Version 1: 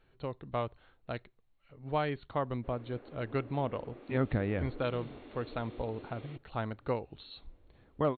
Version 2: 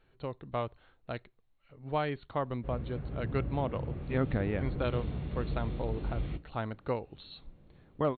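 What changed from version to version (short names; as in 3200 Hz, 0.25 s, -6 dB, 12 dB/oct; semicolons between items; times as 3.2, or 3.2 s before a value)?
background: remove steep high-pass 250 Hz 48 dB/oct; reverb: on, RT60 0.35 s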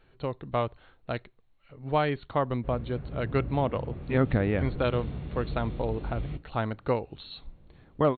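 speech +6.0 dB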